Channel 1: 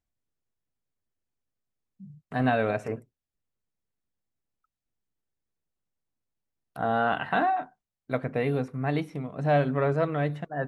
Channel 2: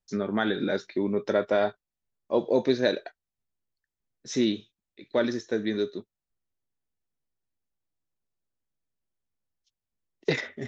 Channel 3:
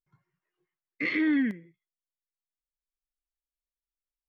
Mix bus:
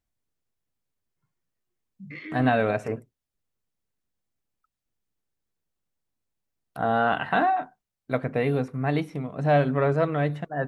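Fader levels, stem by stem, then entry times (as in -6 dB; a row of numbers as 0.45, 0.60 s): +2.5 dB, off, -11.5 dB; 0.00 s, off, 1.10 s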